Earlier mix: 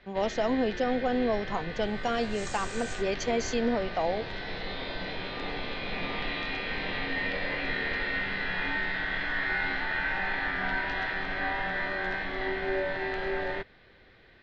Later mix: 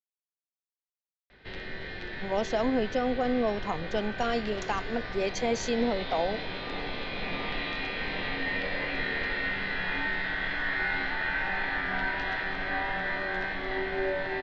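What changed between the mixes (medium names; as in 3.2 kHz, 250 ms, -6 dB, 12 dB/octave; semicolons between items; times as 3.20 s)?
speech: entry +2.15 s; first sound: entry +1.30 s; second sound: muted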